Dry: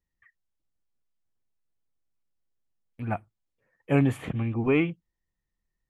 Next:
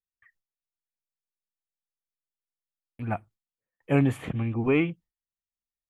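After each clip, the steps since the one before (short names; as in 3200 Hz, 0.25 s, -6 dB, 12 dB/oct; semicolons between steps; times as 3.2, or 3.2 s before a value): gate with hold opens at -60 dBFS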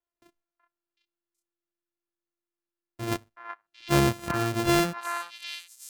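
sample sorter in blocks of 128 samples; delay with a stepping band-pass 0.375 s, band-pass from 1300 Hz, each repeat 1.4 oct, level -1 dB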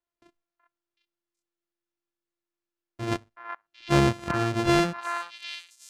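air absorption 61 m; crackling interface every 0.72 s, samples 1024, repeat, from 0.62; gain +1.5 dB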